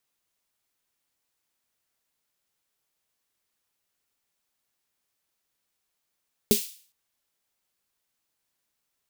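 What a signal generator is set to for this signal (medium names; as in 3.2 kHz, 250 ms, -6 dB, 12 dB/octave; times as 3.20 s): snare drum length 0.41 s, tones 220 Hz, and 410 Hz, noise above 2.8 kHz, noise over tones -6 dB, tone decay 0.12 s, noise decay 0.47 s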